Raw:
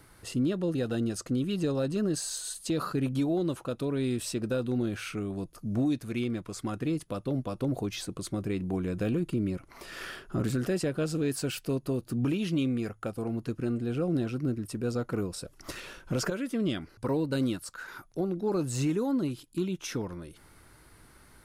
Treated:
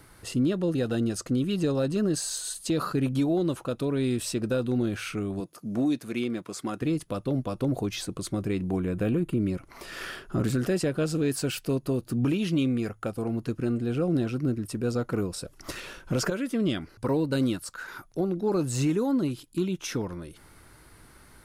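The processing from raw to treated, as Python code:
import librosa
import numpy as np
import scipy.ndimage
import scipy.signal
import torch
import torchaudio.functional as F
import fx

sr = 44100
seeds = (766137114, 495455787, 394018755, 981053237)

y = fx.highpass(x, sr, hz=190.0, slope=12, at=(5.4, 6.82))
y = fx.peak_eq(y, sr, hz=5300.0, db=-9.5, octaves=0.96, at=(8.8, 9.4))
y = F.gain(torch.from_numpy(y), 3.0).numpy()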